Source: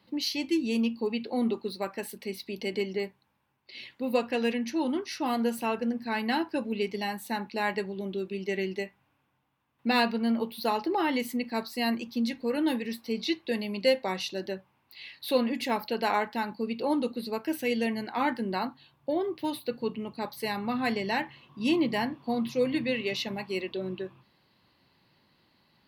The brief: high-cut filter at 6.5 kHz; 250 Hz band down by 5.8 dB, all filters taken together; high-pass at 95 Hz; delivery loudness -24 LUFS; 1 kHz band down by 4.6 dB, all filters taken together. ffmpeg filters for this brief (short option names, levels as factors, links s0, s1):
-af "highpass=95,lowpass=6500,equalizer=f=250:t=o:g=-6.5,equalizer=f=1000:t=o:g=-5.5,volume=3.16"